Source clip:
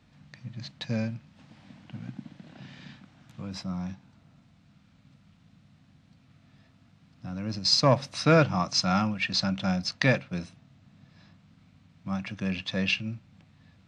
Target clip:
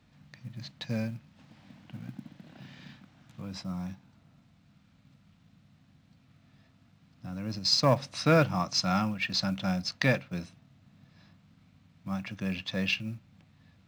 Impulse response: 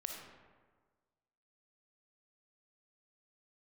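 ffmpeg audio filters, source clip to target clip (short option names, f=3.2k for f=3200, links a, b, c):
-af "acrusher=bits=8:mode=log:mix=0:aa=0.000001,volume=-2.5dB"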